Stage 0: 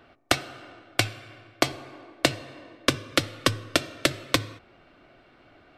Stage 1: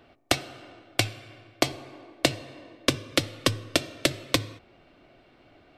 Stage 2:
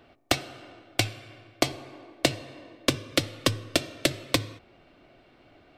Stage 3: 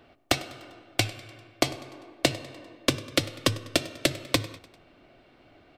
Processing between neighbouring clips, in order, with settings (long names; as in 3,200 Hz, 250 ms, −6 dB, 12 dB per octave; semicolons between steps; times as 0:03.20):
parametric band 1,400 Hz −6 dB 0.84 octaves
gain into a clipping stage and back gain 9 dB
repeating echo 99 ms, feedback 54%, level −20 dB